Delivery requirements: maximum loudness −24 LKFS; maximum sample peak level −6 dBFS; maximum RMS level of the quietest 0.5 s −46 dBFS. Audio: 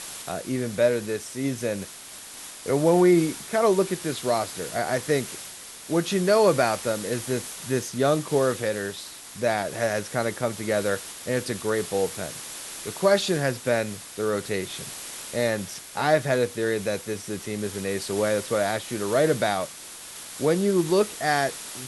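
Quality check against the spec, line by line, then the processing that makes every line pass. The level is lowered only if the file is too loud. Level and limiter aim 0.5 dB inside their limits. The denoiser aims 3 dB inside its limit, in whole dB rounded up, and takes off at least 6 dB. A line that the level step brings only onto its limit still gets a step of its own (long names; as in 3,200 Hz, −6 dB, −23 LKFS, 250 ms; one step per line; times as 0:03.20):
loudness −25.5 LKFS: in spec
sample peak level −8.0 dBFS: in spec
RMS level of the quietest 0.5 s −42 dBFS: out of spec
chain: broadband denoise 7 dB, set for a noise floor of −42 dBFS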